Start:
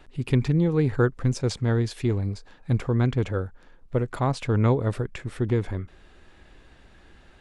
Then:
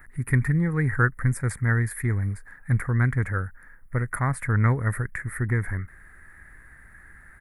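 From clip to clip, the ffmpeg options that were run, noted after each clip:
ffmpeg -i in.wav -af "firequalizer=gain_entry='entry(120,0);entry(340,-10);entry(560,-10);entry(860,-6);entry(1300,4);entry(1900,13);entry(2800,-23);entry(6100,-14);entry(10000,15)':delay=0.05:min_phase=1,volume=1.5dB" out.wav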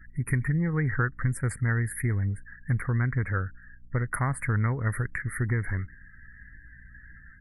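ffmpeg -i in.wav -af "acompressor=threshold=-22dB:ratio=6,aeval=exprs='val(0)+0.002*(sin(2*PI*60*n/s)+sin(2*PI*2*60*n/s)/2+sin(2*PI*3*60*n/s)/3+sin(2*PI*4*60*n/s)/4+sin(2*PI*5*60*n/s)/5)':channel_layout=same,afftdn=noise_reduction=29:noise_floor=-47" out.wav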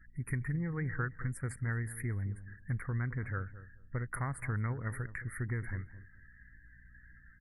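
ffmpeg -i in.wav -filter_complex "[0:a]asplit=2[link_01][link_02];[link_02]adelay=217,lowpass=frequency=950:poles=1,volume=-13.5dB,asplit=2[link_03][link_04];[link_04]adelay=217,lowpass=frequency=950:poles=1,volume=0.21[link_05];[link_01][link_03][link_05]amix=inputs=3:normalize=0,volume=-9dB" out.wav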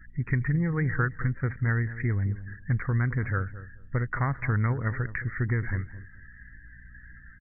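ffmpeg -i in.wav -af "aresample=8000,aresample=44100,volume=9dB" out.wav

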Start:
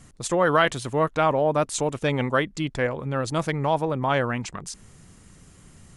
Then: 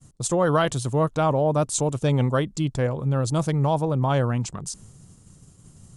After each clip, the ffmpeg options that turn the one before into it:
ffmpeg -i in.wav -af "agate=range=-33dB:threshold=-45dB:ratio=3:detection=peak,equalizer=frequency=125:width_type=o:width=1:gain=8,equalizer=frequency=2000:width_type=o:width=1:gain=-10,equalizer=frequency=8000:width_type=o:width=1:gain=5" out.wav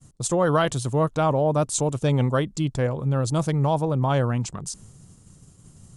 ffmpeg -i in.wav -af anull out.wav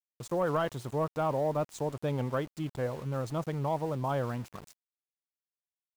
ffmpeg -i in.wav -filter_complex "[0:a]asplit=2[link_01][link_02];[link_02]highpass=frequency=720:poles=1,volume=10dB,asoftclip=type=tanh:threshold=-9dB[link_03];[link_01][link_03]amix=inputs=2:normalize=0,lowpass=frequency=1000:poles=1,volume=-6dB,aeval=exprs='val(0)*gte(abs(val(0)),0.015)':channel_layout=same,volume=-8dB" out.wav

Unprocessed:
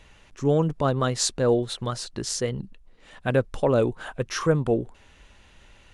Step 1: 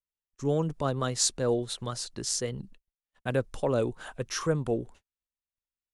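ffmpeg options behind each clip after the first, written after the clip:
ffmpeg -i in.wav -filter_complex "[0:a]agate=range=-46dB:threshold=-43dB:ratio=16:detection=peak,acrossover=split=430|4700[link_01][link_02][link_03];[link_03]acontrast=73[link_04];[link_01][link_02][link_04]amix=inputs=3:normalize=0,volume=-6dB" out.wav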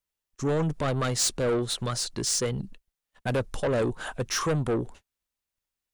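ffmpeg -i in.wav -af "asoftclip=type=tanh:threshold=-29dB,volume=7.5dB" out.wav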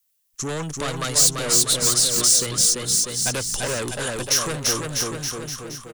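ffmpeg -i in.wav -filter_complex "[0:a]aecho=1:1:340|646|921.4|1169|1392:0.631|0.398|0.251|0.158|0.1,acrossover=split=330|770[link_01][link_02][link_03];[link_01]acompressor=threshold=-30dB:ratio=4[link_04];[link_02]acompressor=threshold=-34dB:ratio=4[link_05];[link_03]acompressor=threshold=-29dB:ratio=4[link_06];[link_04][link_05][link_06]amix=inputs=3:normalize=0,crystalizer=i=5.5:c=0" out.wav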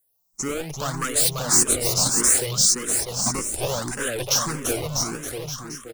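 ffmpeg -i in.wav -filter_complex "[0:a]acrossover=split=4400[link_01][link_02];[link_01]acrusher=samples=15:mix=1:aa=0.000001:lfo=1:lforange=24:lforate=0.66[link_03];[link_03][link_02]amix=inputs=2:normalize=0,asplit=2[link_04][link_05];[link_05]afreqshift=1.7[link_06];[link_04][link_06]amix=inputs=2:normalize=1,volume=2.5dB" out.wav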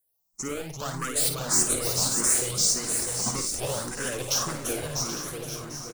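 ffmpeg -i in.wav -af "aecho=1:1:55|778|854:0.398|0.282|0.237,volume=-5.5dB" out.wav

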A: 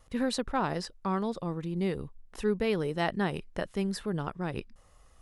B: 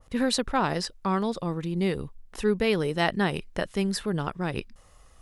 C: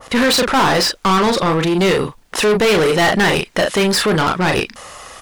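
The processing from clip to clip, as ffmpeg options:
ffmpeg -i in.wav -af "adynamicequalizer=threshold=0.00562:dfrequency=1700:dqfactor=0.7:tfrequency=1700:tqfactor=0.7:attack=5:release=100:ratio=0.375:range=2:mode=boostabove:tftype=highshelf,volume=4dB" out.wav
ffmpeg -i in.wav -filter_complex "[0:a]asplit=2[link_01][link_02];[link_02]adelay=38,volume=-9dB[link_03];[link_01][link_03]amix=inputs=2:normalize=0,asplit=2[link_04][link_05];[link_05]highpass=frequency=720:poles=1,volume=31dB,asoftclip=type=tanh:threshold=-9dB[link_06];[link_04][link_06]amix=inputs=2:normalize=0,lowpass=frequency=6000:poles=1,volume=-6dB,volume=2.5dB" out.wav

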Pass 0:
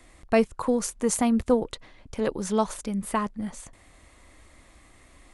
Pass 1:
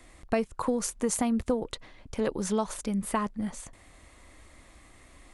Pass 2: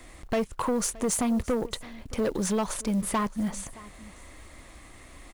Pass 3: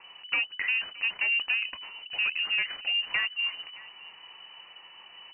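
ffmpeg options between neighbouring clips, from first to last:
ffmpeg -i in.wav -af "acompressor=threshold=-23dB:ratio=6" out.wav
ffmpeg -i in.wav -af "acrusher=bits=6:mode=log:mix=0:aa=0.000001,asoftclip=type=tanh:threshold=-26.5dB,aecho=1:1:620:0.0944,volume=5.5dB" out.wav
ffmpeg -i in.wav -af "lowpass=frequency=2600:width_type=q:width=0.5098,lowpass=frequency=2600:width_type=q:width=0.6013,lowpass=frequency=2600:width_type=q:width=0.9,lowpass=frequency=2600:width_type=q:width=2.563,afreqshift=-3000,volume=-1.5dB" out.wav

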